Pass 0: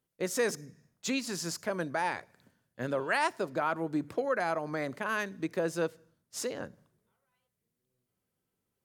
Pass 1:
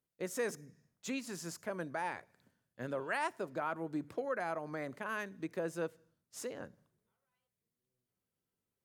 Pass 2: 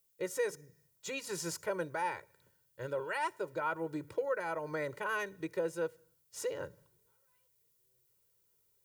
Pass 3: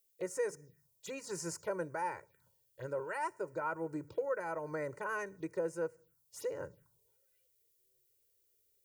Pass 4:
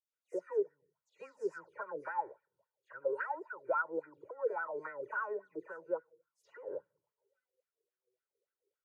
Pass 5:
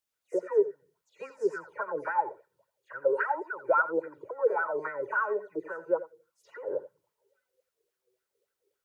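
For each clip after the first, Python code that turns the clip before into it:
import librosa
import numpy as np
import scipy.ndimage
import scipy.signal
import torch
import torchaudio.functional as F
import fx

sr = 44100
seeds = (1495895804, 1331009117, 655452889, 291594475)

y1 = fx.dynamic_eq(x, sr, hz=4600.0, q=1.5, threshold_db=-54.0, ratio=4.0, max_db=-6)
y1 = F.gain(torch.from_numpy(y1), -6.5).numpy()
y2 = y1 + 0.96 * np.pad(y1, (int(2.1 * sr / 1000.0), 0))[:len(y1)]
y2 = fx.rider(y2, sr, range_db=10, speed_s=0.5)
y2 = fx.dmg_noise_colour(y2, sr, seeds[0], colour='violet', level_db=-74.0)
y3 = fx.env_phaser(y2, sr, low_hz=160.0, high_hz=3500.0, full_db=-37.5)
y3 = F.gain(torch.from_numpy(y3), -1.0).numpy()
y4 = fx.wah_lfo(y3, sr, hz=3.6, low_hz=390.0, high_hz=1500.0, q=6.9)
y4 = fx.dispersion(y4, sr, late='lows', ms=130.0, hz=2800.0)
y4 = fx.vibrato(y4, sr, rate_hz=10.0, depth_cents=31.0)
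y4 = F.gain(torch.from_numpy(y4), 9.0).numpy()
y5 = y4 + 10.0 ** (-15.0 / 20.0) * np.pad(y4, (int(85 * sr / 1000.0), 0))[:len(y4)]
y5 = F.gain(torch.from_numpy(y5), 8.5).numpy()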